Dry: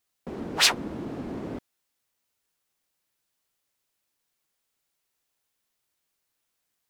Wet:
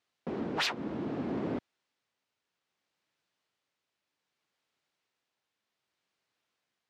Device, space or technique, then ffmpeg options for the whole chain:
AM radio: -af "highpass=110,lowpass=4.2k,acompressor=threshold=-26dB:ratio=6,asoftclip=type=tanh:threshold=-21dB,tremolo=f=0.64:d=0.28,volume=2dB"

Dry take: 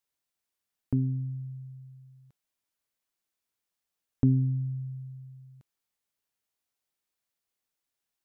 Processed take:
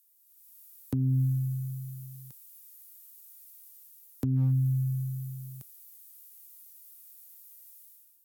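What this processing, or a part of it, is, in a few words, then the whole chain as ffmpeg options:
FM broadcast chain: -filter_complex "[0:a]highpass=64,dynaudnorm=f=120:g=7:m=13.5dB,acrossover=split=140|440[a][b][c];[a]acompressor=threshold=-19dB:ratio=4[d];[b]acompressor=threshold=-19dB:ratio=4[e];[c]acompressor=threshold=-48dB:ratio=4[f];[d][e][f]amix=inputs=3:normalize=0,aemphasis=mode=production:type=50fm,alimiter=limit=-15.5dB:level=0:latency=1:release=279,asoftclip=type=hard:threshold=-16.5dB,lowpass=f=15k:w=0.5412,lowpass=f=15k:w=1.3066,aemphasis=mode=production:type=50fm,volume=-4dB"

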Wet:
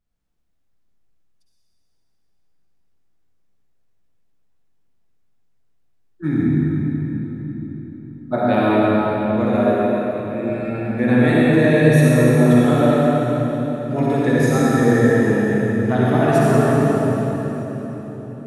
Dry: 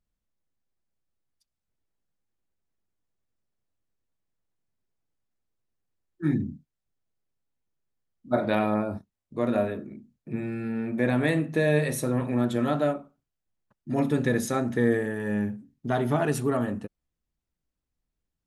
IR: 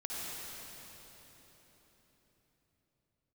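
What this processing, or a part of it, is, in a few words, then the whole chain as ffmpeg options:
swimming-pool hall: -filter_complex "[0:a]asettb=1/sr,asplit=3[a][b][c];[a]atrim=end=9.454[d];[b]atrim=start=9.45:end=10.5,asetpts=PTS-STARTPTS,afade=t=in:d=0.004:c=qsin,afade=t=out:st=1.046:d=0.004:c=qsin,highpass=220[e];[c]atrim=start=10.496[f];[d][e]acrossfade=d=0.004:c1=hsin:c2=qsin[g];[g][f]acrossfade=d=0.004:c1=qsin:c2=hsin[h];[1:a]atrim=start_sample=2205[i];[h][i]afir=irnorm=-1:irlink=0,highshelf=f=5.7k:g=-6,volume=7.5dB"

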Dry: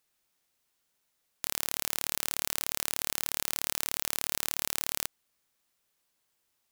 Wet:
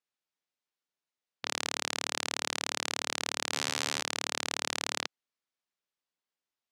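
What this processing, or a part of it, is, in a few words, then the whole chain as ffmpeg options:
over-cleaned archive recording: -filter_complex "[0:a]highpass=160,lowpass=5.7k,afwtdn=0.00398,asettb=1/sr,asplit=3[a][b][c];[a]atrim=end=3.504[d];[b]atrim=start=3.5:end=4.01,asetpts=PTS-STARTPTS,afade=t=in:d=0.004:c=qsin,afade=t=out:st=0.506:d=0.004:c=qsin,asplit=2[e][f];[f]adelay=39,volume=-2dB[g];[e][g]amix=inputs=2:normalize=0,atrim=end_sample=22491[h];[c]atrim=start=4.006[i];[d][h]acrossfade=d=0.004:c1=hsin:c2=qsin[j];[j][i]acrossfade=d=0.004:c1=qsin:c2=hsin,volume=4.5dB"

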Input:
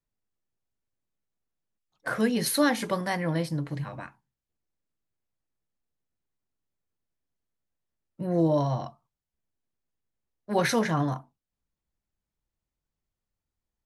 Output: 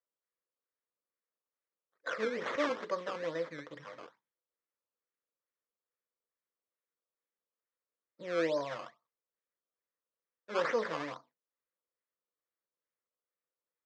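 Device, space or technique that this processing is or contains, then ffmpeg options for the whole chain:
circuit-bent sampling toy: -af "acrusher=samples=16:mix=1:aa=0.000001:lfo=1:lforange=16:lforate=2.3,highpass=410,equalizer=f=500:t=q:w=4:g=9,equalizer=f=770:t=q:w=4:g=-8,equalizer=f=1.2k:t=q:w=4:g=4,equalizer=f=1.9k:t=q:w=4:g=5,equalizer=f=2.8k:t=q:w=4:g=-5,equalizer=f=4.4k:t=q:w=4:g=-5,lowpass=f=5.1k:w=0.5412,lowpass=f=5.1k:w=1.3066,volume=-7.5dB"

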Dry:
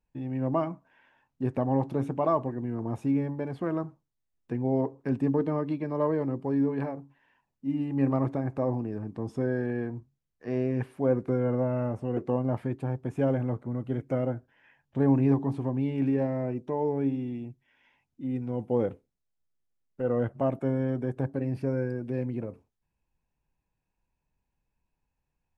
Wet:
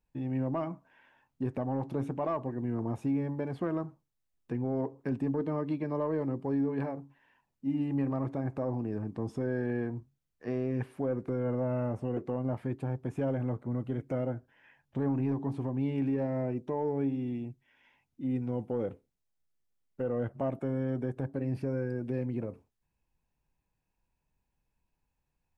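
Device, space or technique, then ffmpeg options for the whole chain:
soft clipper into limiter: -af "asoftclip=type=tanh:threshold=-14.5dB,alimiter=limit=-23dB:level=0:latency=1:release=229"

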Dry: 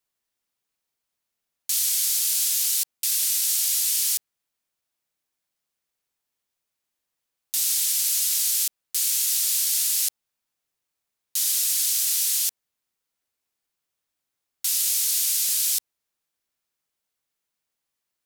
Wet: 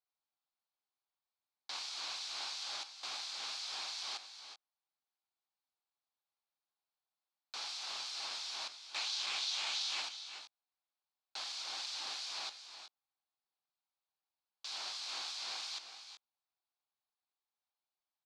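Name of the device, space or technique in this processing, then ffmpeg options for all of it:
voice changer toy: -filter_complex "[0:a]asettb=1/sr,asplit=3[a][b][c];[a]atrim=end=8.824[d];[b]atrim=start=8.82:end=10.02,asetpts=PTS-STARTPTS,afade=t=in:d=0.004:c=qsin,afade=t=out:st=1.196:d=0.004:c=qsin,equalizer=f=4.8k:t=o:w=0.63:g=8.5[e];[c]atrim=start=10.016[f];[d][e]acrossfade=d=0.004:c1=hsin:c2=qsin[g];[g][f]acrossfade=d=0.004:c1=qsin:c2=hsin,aeval=exprs='val(0)*sin(2*PI*1700*n/s+1700*0.45/2.9*sin(2*PI*2.9*n/s))':c=same,highpass=420,equalizer=f=470:t=q:w=4:g=-6,equalizer=f=800:t=q:w=4:g=8,equalizer=f=1.1k:t=q:w=4:g=3,equalizer=f=1.9k:t=q:w=4:g=-8,equalizer=f=2.9k:t=q:w=4:g=-4,equalizer=f=4.3k:t=q:w=4:g=4,lowpass=f=4.6k:w=0.5412,lowpass=f=4.6k:w=1.3066,aecho=1:1:367|386:0.266|0.2,volume=-7dB"

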